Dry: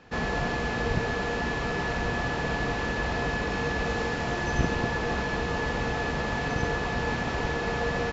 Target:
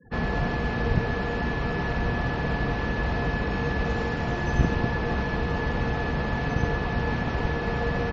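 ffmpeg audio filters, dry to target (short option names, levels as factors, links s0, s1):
-filter_complex "[0:a]afftfilt=real='re*gte(hypot(re,im),0.00631)':imag='im*gte(hypot(re,im),0.00631)':win_size=1024:overlap=0.75,highshelf=f=4400:g=-6.5,acrossover=split=230|3800[s0][s1][s2];[s0]acontrast=36[s3];[s3][s1][s2]amix=inputs=3:normalize=0"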